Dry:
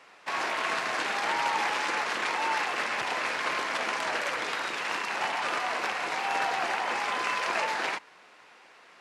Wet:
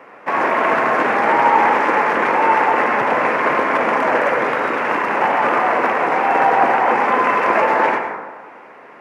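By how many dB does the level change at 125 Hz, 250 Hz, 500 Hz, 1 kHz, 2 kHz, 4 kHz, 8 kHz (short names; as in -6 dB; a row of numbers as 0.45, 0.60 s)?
+17.0 dB, +19.0 dB, +18.0 dB, +15.0 dB, +10.5 dB, -1.5 dB, n/a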